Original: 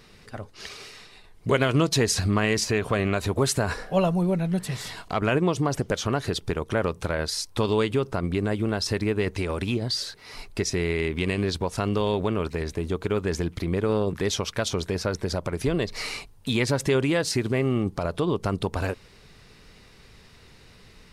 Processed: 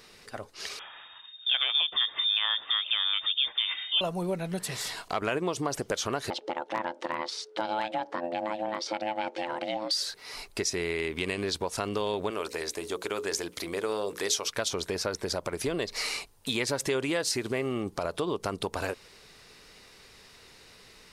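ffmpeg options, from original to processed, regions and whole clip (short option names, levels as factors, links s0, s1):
-filter_complex "[0:a]asettb=1/sr,asplit=3[s0][s1][s2];[s0]atrim=end=0.794[s3];[s1]atrim=start=0.79:end=4.01,asetpts=PTS-STARTPTS,afade=t=in:d=0.004:c=qsin,afade=t=out:st=3.216:d=0.004:c=qsin,lowpass=f=3100:t=q:w=0.5098,lowpass=f=3100:t=q:w=0.6013,lowpass=f=3100:t=q:w=0.9,lowpass=f=3100:t=q:w=2.563,afreqshift=-3700,bandreject=f=2200:w=18[s4];[s2]atrim=start=4.006[s5];[s3][s4]acrossfade=d=0.004:c1=hsin:c2=qsin[s6];[s6][s5]acrossfade=d=0.004:c1=qsin:c2=hsin,asettb=1/sr,asplit=3[s7][s8][s9];[s7]atrim=end=6.304[s10];[s8]atrim=start=6.3:end=9.91,asetpts=PTS-STARTPTS,afade=t=in:d=0.004:c=qsin,afade=t=out:st=3.606:d=0.004:c=qsin,aeval=exprs='val(0)*sin(2*PI*430*n/s)':c=same,highpass=200,lowpass=3700,asoftclip=type=hard:threshold=0.15[s11];[s9]atrim=start=9.906[s12];[s10][s11]acrossfade=d=0.004:c1=hsin:c2=qsin[s13];[s13][s12]acrossfade=d=0.004:c1=qsin:c2=hsin,asettb=1/sr,asplit=3[s14][s15][s16];[s14]atrim=end=12.304[s17];[s15]atrim=start=12.3:end=14.48,asetpts=PTS-STARTPTS,afade=t=in:d=0.004:c=qsin,afade=t=out:st=2.176:d=0.004:c=qsin,bass=f=250:g=-11,treble=f=4000:g=6,bandreject=f=60:t=h:w=6,bandreject=f=120:t=h:w=6,bandreject=f=180:t=h:w=6,bandreject=f=240:t=h:w=6,bandreject=f=300:t=h:w=6,bandreject=f=360:t=h:w=6,bandreject=f=420:t=h:w=6,bandreject=f=480:t=h:w=6,bandreject=f=540:t=h:w=6[s18];[s16]atrim=start=14.476[s19];[s17][s18]acrossfade=d=0.004:c1=hsin:c2=qsin[s20];[s20][s19]acrossfade=d=0.004:c1=qsin:c2=hsin,bass=f=250:g=-11,treble=f=4000:g=4,acompressor=threshold=0.0398:ratio=2"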